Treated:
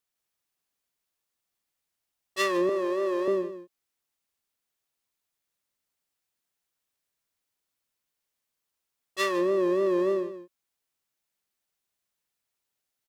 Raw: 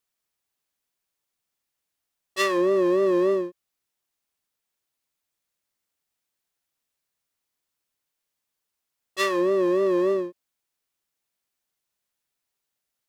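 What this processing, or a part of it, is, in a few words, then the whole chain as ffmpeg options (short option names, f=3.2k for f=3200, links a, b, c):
ducked delay: -filter_complex "[0:a]asettb=1/sr,asplit=3[a][b][c];[a]atrim=end=2.694[d];[b]atrim=start=2.69:end=3.28,asetpts=PTS-STARTPTS,afade=t=in:d=0.004:c=qsin,afade=t=out:st=0.586:d=0.004:c=qsin,highpass=440[e];[c]atrim=start=3.276[f];[d][e]acrossfade=d=0.004:c1=hsin:c2=qsin[g];[g][f]acrossfade=d=0.004:c1=qsin:c2=hsin,asplit=3[h][i][j];[i]adelay=155,volume=-3dB[k];[j]apad=whole_len=583937[l];[k][l]sidechaincompress=threshold=-34dB:ratio=8:attack=16:release=453[m];[h][m]amix=inputs=2:normalize=0,volume=-3dB"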